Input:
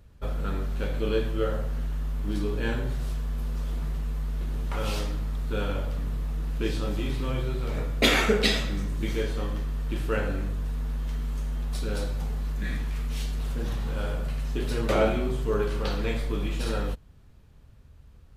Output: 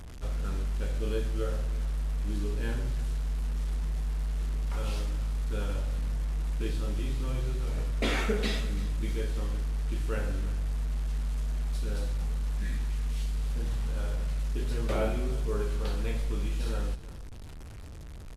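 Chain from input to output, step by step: one-bit delta coder 64 kbps, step -34 dBFS; bass shelf 120 Hz +7.5 dB; on a send: delay 338 ms -18 dB; on the sum: trim -8 dB

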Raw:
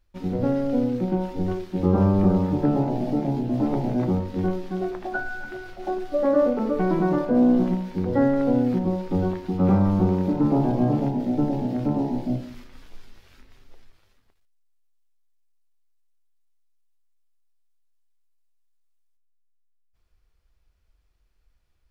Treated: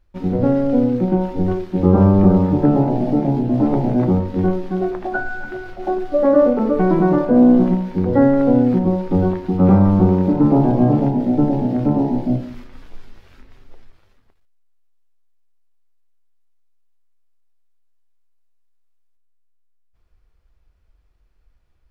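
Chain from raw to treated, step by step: treble shelf 2.7 kHz -9.5 dB; trim +7 dB

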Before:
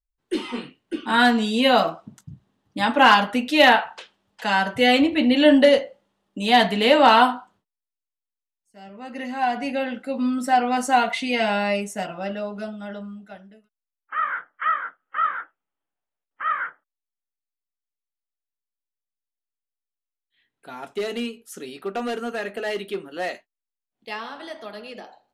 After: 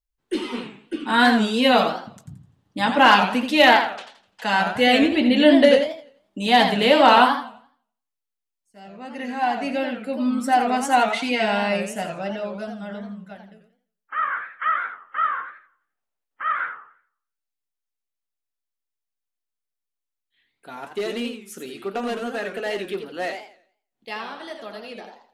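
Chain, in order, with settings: modulated delay 86 ms, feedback 34%, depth 196 cents, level -8 dB

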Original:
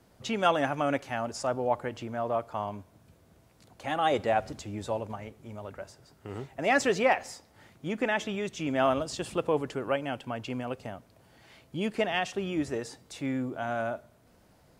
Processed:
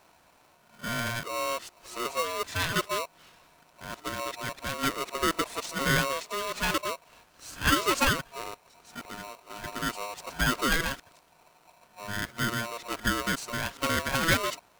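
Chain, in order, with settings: reverse the whole clip; polarity switched at an audio rate 820 Hz

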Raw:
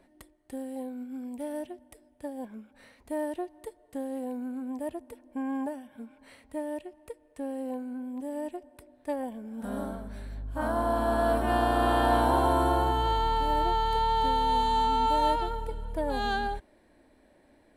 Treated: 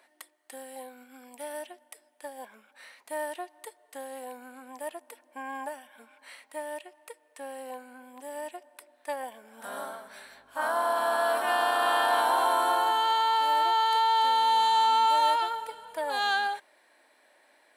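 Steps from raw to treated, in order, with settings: high-pass 970 Hz 12 dB/octave; in parallel at +2.5 dB: peak limiter -25 dBFS, peak gain reduction 7 dB

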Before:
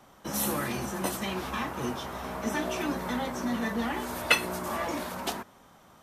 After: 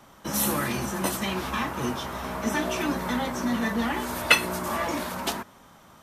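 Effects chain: peaking EQ 460 Hz -2.5 dB 1 oct; band-stop 750 Hz, Q 19; trim +4.5 dB

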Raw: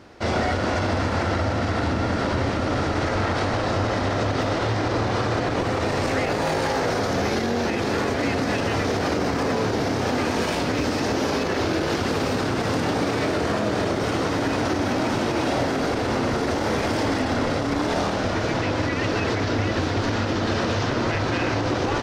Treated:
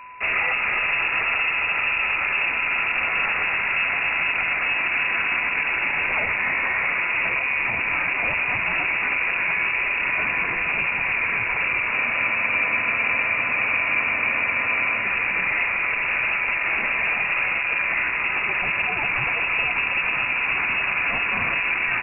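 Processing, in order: whistle 1.7 kHz -39 dBFS; frequency inversion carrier 2.7 kHz; spectral freeze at 11.94 s, 3.10 s

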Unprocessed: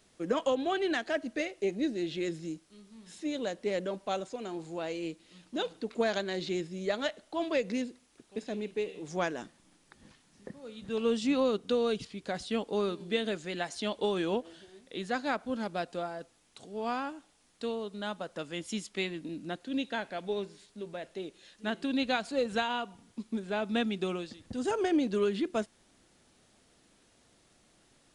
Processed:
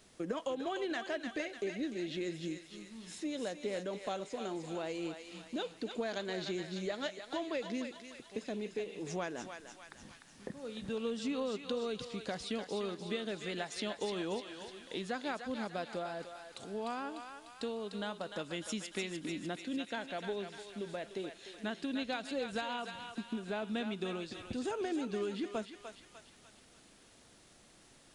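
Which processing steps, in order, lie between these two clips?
compression 3:1, threshold -40 dBFS, peak gain reduction 12.5 dB; on a send: thinning echo 299 ms, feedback 60%, high-pass 950 Hz, level -5 dB; on the sum: trim +2.5 dB

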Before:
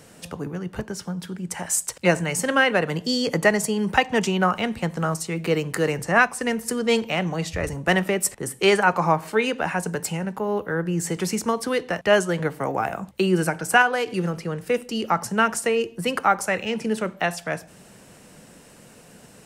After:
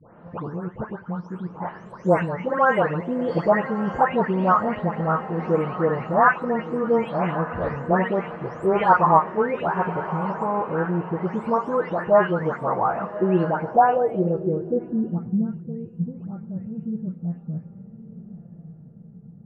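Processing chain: delay that grows with frequency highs late, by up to 393 ms; echo that smears into a reverb 1178 ms, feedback 42%, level -12.5 dB; low-pass sweep 1.1 kHz -> 160 Hz, 13.44–15.62 s

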